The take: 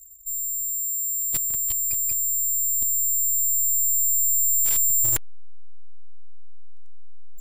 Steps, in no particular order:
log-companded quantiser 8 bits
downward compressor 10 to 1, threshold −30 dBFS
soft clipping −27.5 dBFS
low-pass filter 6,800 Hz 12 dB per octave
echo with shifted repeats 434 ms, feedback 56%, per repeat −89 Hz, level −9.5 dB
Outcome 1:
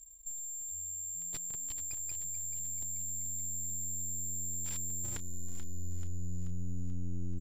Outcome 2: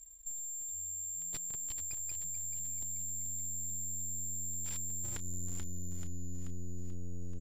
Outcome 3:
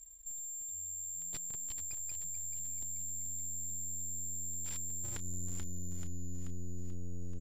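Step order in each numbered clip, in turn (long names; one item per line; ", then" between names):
downward compressor, then low-pass filter, then log-companded quantiser, then soft clipping, then echo with shifted repeats
log-companded quantiser, then echo with shifted repeats, then downward compressor, then low-pass filter, then soft clipping
log-companded quantiser, then echo with shifted repeats, then downward compressor, then soft clipping, then low-pass filter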